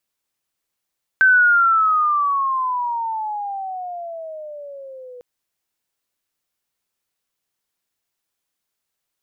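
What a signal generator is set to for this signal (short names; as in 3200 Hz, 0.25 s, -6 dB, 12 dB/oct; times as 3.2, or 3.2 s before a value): gliding synth tone sine, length 4.00 s, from 1550 Hz, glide -20 st, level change -26 dB, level -9 dB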